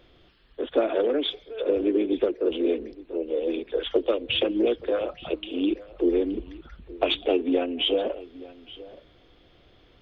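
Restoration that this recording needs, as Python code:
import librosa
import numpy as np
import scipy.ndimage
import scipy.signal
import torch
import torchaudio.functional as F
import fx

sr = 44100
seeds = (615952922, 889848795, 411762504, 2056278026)

y = fx.fix_echo_inverse(x, sr, delay_ms=874, level_db=-19.0)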